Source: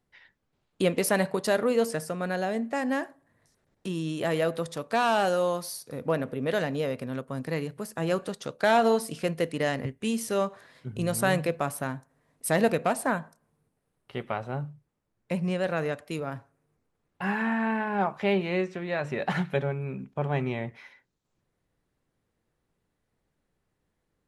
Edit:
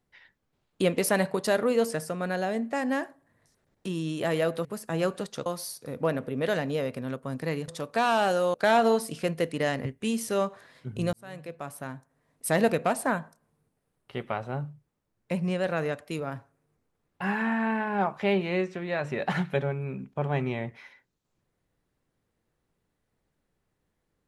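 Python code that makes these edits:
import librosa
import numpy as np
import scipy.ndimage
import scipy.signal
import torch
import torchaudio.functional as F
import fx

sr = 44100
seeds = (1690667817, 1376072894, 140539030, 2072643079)

y = fx.edit(x, sr, fx.swap(start_s=4.65, length_s=0.86, other_s=7.73, other_length_s=0.81),
    fx.fade_in_span(start_s=11.13, length_s=1.42), tone=tone)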